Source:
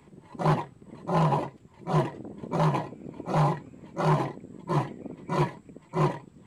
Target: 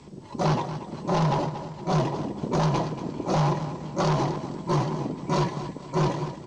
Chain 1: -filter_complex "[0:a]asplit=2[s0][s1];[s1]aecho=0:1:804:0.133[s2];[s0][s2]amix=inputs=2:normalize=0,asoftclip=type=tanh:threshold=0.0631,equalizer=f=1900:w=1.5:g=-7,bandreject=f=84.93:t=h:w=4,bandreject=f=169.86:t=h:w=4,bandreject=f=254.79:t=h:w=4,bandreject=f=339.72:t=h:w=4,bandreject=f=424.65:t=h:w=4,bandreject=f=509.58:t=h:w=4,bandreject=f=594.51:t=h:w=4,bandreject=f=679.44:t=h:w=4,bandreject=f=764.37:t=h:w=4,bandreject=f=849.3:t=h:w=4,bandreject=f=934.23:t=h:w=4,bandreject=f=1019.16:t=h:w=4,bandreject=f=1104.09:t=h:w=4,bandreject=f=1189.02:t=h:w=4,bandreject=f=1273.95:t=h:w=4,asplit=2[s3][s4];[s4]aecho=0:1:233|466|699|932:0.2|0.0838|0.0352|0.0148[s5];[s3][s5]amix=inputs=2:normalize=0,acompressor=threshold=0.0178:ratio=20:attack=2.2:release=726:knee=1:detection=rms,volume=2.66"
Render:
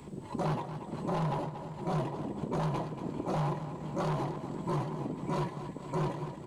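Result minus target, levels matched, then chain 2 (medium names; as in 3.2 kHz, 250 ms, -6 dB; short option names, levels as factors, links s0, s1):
compression: peak gain reduction +8.5 dB; 8 kHz band -4.5 dB
-filter_complex "[0:a]asplit=2[s0][s1];[s1]aecho=0:1:804:0.133[s2];[s0][s2]amix=inputs=2:normalize=0,asoftclip=type=tanh:threshold=0.0631,lowpass=f=5700:t=q:w=3.1,equalizer=f=1900:w=1.5:g=-7,bandreject=f=84.93:t=h:w=4,bandreject=f=169.86:t=h:w=4,bandreject=f=254.79:t=h:w=4,bandreject=f=339.72:t=h:w=4,bandreject=f=424.65:t=h:w=4,bandreject=f=509.58:t=h:w=4,bandreject=f=594.51:t=h:w=4,bandreject=f=679.44:t=h:w=4,bandreject=f=764.37:t=h:w=4,bandreject=f=849.3:t=h:w=4,bandreject=f=934.23:t=h:w=4,bandreject=f=1019.16:t=h:w=4,bandreject=f=1104.09:t=h:w=4,bandreject=f=1189.02:t=h:w=4,bandreject=f=1273.95:t=h:w=4,asplit=2[s3][s4];[s4]aecho=0:1:233|466|699|932:0.2|0.0838|0.0352|0.0148[s5];[s3][s5]amix=inputs=2:normalize=0,acompressor=threshold=0.0501:ratio=20:attack=2.2:release=726:knee=1:detection=rms,volume=2.66"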